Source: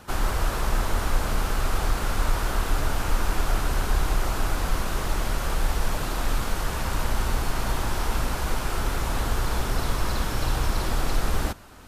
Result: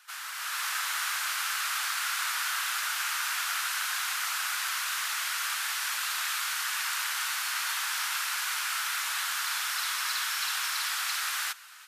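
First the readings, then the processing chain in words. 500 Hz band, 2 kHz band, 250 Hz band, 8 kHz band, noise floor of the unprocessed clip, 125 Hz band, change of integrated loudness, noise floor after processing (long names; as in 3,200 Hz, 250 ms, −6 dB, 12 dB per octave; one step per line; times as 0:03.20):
−26.0 dB, +4.0 dB, below −40 dB, +5.0 dB, −30 dBFS, below −40 dB, −1.0 dB, −39 dBFS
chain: high-pass filter 1,400 Hz 24 dB per octave
automatic gain control gain up to 9 dB
level −4 dB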